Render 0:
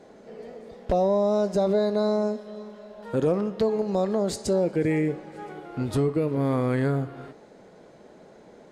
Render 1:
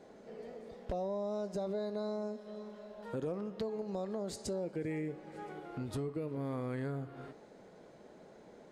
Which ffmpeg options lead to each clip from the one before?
ffmpeg -i in.wav -af "acompressor=threshold=-35dB:ratio=2,volume=-6dB" out.wav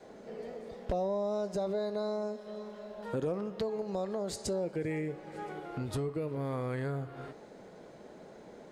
ffmpeg -i in.wav -af "adynamicequalizer=threshold=0.00224:dfrequency=250:dqfactor=1.6:tfrequency=250:tqfactor=1.6:attack=5:release=100:ratio=0.375:range=3:mode=cutabove:tftype=bell,volume=5dB" out.wav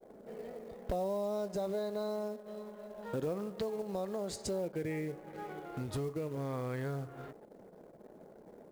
ffmpeg -i in.wav -af "anlmdn=0.00398,acrusher=bits=6:mode=log:mix=0:aa=0.000001,volume=-2.5dB" out.wav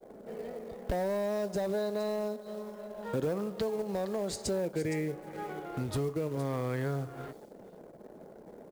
ffmpeg -i in.wav -filter_complex "[0:a]acrossover=split=370|2900[link_01][link_02][link_03];[link_02]volume=35dB,asoftclip=hard,volume=-35dB[link_04];[link_03]aecho=1:1:465:0.299[link_05];[link_01][link_04][link_05]amix=inputs=3:normalize=0,volume=4.5dB" out.wav

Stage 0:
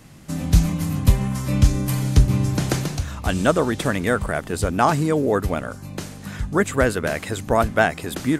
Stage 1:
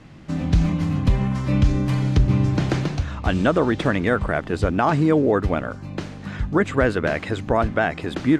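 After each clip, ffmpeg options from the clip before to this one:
ffmpeg -i in.wav -af "lowpass=3600,equalizer=frequency=320:width_type=o:width=0.24:gain=3.5,alimiter=level_in=8.5dB:limit=-1dB:release=50:level=0:latency=1,volume=-7dB" out.wav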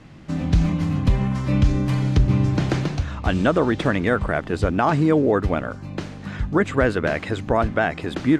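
ffmpeg -i in.wav -af anull out.wav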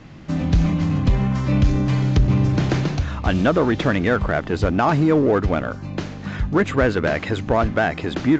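ffmpeg -i in.wav -filter_complex "[0:a]asplit=2[link_01][link_02];[link_02]asoftclip=type=hard:threshold=-21.5dB,volume=-4.5dB[link_03];[link_01][link_03]amix=inputs=2:normalize=0,aresample=16000,aresample=44100,volume=-1dB" out.wav

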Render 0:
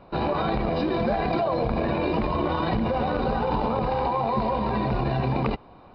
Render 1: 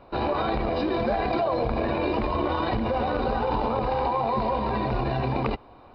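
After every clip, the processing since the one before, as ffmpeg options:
ffmpeg -i in.wav -af "equalizer=frequency=170:width=3.9:gain=-12.5" out.wav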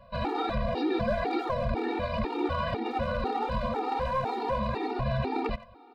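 ffmpeg -i in.wav -filter_complex "[0:a]acrossover=split=320|1200[link_01][link_02][link_03];[link_02]aeval=exprs='clip(val(0),-1,0.0376)':channel_layout=same[link_04];[link_01][link_04][link_03]amix=inputs=3:normalize=0,asplit=2[link_05][link_06];[link_06]adelay=90,highpass=300,lowpass=3400,asoftclip=type=hard:threshold=-22dB,volume=-13dB[link_07];[link_05][link_07]amix=inputs=2:normalize=0,afftfilt=real='re*gt(sin(2*PI*2*pts/sr)*(1-2*mod(floor(b*sr/1024/240),2)),0)':imag='im*gt(sin(2*PI*2*pts/sr)*(1-2*mod(floor(b*sr/1024/240),2)),0)':win_size=1024:overlap=0.75" out.wav

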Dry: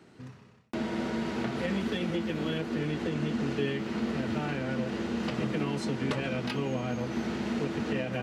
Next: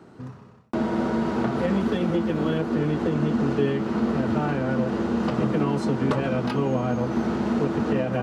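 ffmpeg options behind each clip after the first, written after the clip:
ffmpeg -i in.wav -af "highshelf=frequency=1600:width_type=q:width=1.5:gain=-7,volume=7.5dB" out.wav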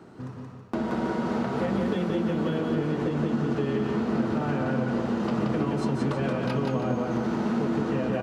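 ffmpeg -i in.wav -filter_complex "[0:a]acompressor=threshold=-26dB:ratio=3,asplit=2[link_01][link_02];[link_02]aecho=0:1:176|323:0.708|0.266[link_03];[link_01][link_03]amix=inputs=2:normalize=0" out.wav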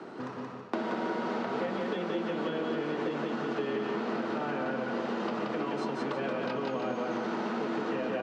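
ffmpeg -i in.wav -filter_complex "[0:a]acrossover=split=460|1600[link_01][link_02][link_03];[link_01]acompressor=threshold=-38dB:ratio=4[link_04];[link_02]acompressor=threshold=-44dB:ratio=4[link_05];[link_03]acompressor=threshold=-52dB:ratio=4[link_06];[link_04][link_05][link_06]amix=inputs=3:normalize=0,highpass=300,lowpass=4900,volume=7.5dB" out.wav

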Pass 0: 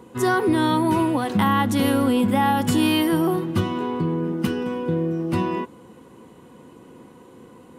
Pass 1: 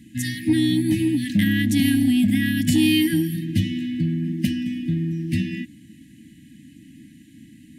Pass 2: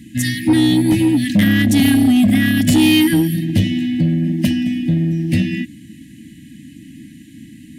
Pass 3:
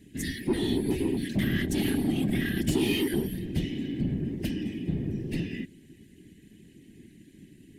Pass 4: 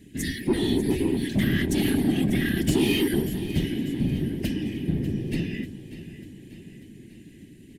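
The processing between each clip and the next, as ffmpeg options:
ffmpeg -i in.wav -af "afftfilt=real='re*(1-between(b*sr/4096,330,1600))':imag='im*(1-between(b*sr/4096,330,1600))':win_size=4096:overlap=0.75,acontrast=55,volume=-3.5dB" out.wav
ffmpeg -i in.wav -af "asoftclip=type=tanh:threshold=-14dB,volume=8dB" out.wav
ffmpeg -i in.wav -af "afftfilt=real='hypot(re,im)*cos(2*PI*random(0))':imag='hypot(re,im)*sin(2*PI*random(1))':win_size=512:overlap=0.75,volume=-8dB" out.wav
ffmpeg -i in.wav -af "aecho=1:1:593|1186|1779|2372|2965|3558:0.2|0.112|0.0626|0.035|0.0196|0.011,volume=3.5dB" out.wav

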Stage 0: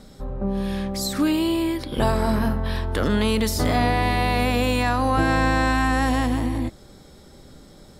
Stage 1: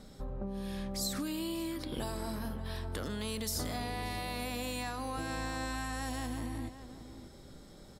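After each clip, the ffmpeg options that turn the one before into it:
ffmpeg -i in.wav -filter_complex "[0:a]acrossover=split=4400[link_01][link_02];[link_01]acompressor=threshold=-29dB:ratio=6[link_03];[link_03][link_02]amix=inputs=2:normalize=0,asplit=2[link_04][link_05];[link_05]adelay=583.1,volume=-12dB,highshelf=frequency=4000:gain=-13.1[link_06];[link_04][link_06]amix=inputs=2:normalize=0,volume=-6.5dB" out.wav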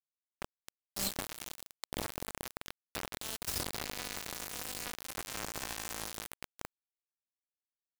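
ffmpeg -i in.wav -af "acrusher=bits=4:mix=0:aa=0.000001" out.wav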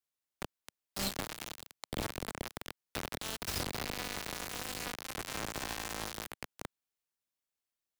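ffmpeg -i in.wav -filter_complex "[0:a]acrossover=split=160|1300|5300[link_01][link_02][link_03][link_04];[link_04]alimiter=level_in=8.5dB:limit=-24dB:level=0:latency=1,volume=-8.5dB[link_05];[link_01][link_02][link_03][link_05]amix=inputs=4:normalize=0,volume=32.5dB,asoftclip=hard,volume=-32.5dB,volume=4dB" out.wav

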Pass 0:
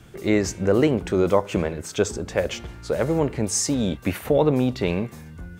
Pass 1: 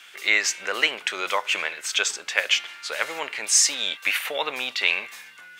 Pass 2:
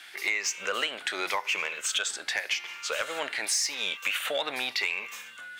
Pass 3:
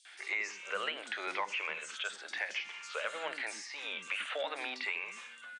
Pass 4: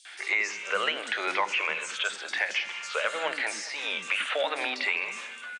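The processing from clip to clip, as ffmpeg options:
ffmpeg -i in.wav -af "highpass=1300,equalizer=frequency=2700:width_type=o:width=1.7:gain=10.5,volume=3.5dB" out.wav
ffmpeg -i in.wav -af "afftfilt=real='re*pow(10,7/40*sin(2*PI*(0.79*log(max(b,1)*sr/1024/100)/log(2)-(0.88)*(pts-256)/sr)))':imag='im*pow(10,7/40*sin(2*PI*(0.79*log(max(b,1)*sr/1024/100)/log(2)-(0.88)*(pts-256)/sr)))':win_size=1024:overlap=0.75,acompressor=threshold=-24dB:ratio=6,asoftclip=type=tanh:threshold=-17dB" out.wav
ffmpeg -i in.wav -filter_complex "[0:a]acrossover=split=330|4800[link_01][link_02][link_03];[link_02]adelay=50[link_04];[link_01]adelay=140[link_05];[link_05][link_04][link_03]amix=inputs=3:normalize=0,acrossover=split=3100[link_06][link_07];[link_07]acompressor=threshold=-43dB:ratio=4:attack=1:release=60[link_08];[link_06][link_08]amix=inputs=2:normalize=0,afftfilt=real='re*between(b*sr/4096,160,10000)':imag='im*between(b*sr/4096,160,10000)':win_size=4096:overlap=0.75,volume=-5dB" out.wav
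ffmpeg -i in.wav -af "aecho=1:1:208|416|624|832:0.141|0.072|0.0367|0.0187,volume=8.5dB" out.wav

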